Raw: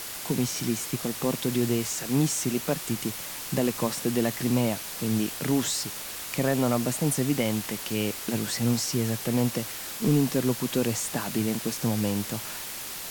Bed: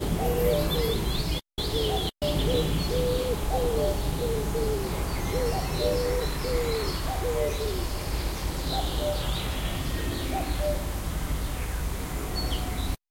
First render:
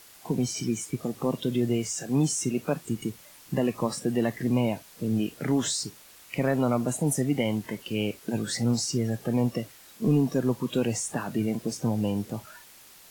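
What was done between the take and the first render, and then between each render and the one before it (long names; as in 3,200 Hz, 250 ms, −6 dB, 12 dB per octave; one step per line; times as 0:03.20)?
noise reduction from a noise print 15 dB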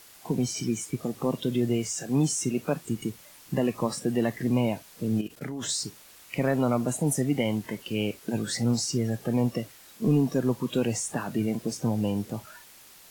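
0:05.21–0:05.69: output level in coarse steps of 17 dB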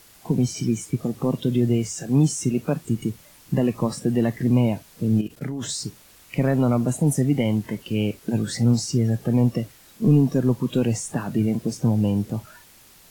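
low-shelf EQ 250 Hz +10.5 dB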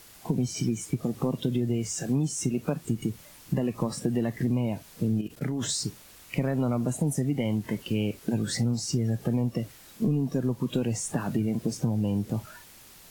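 downward compressor, threshold −23 dBFS, peak gain reduction 10.5 dB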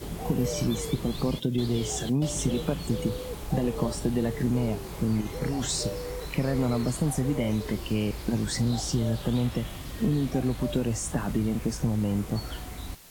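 mix in bed −8.5 dB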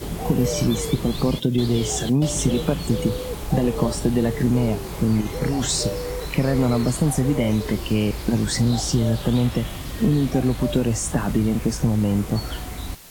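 level +6.5 dB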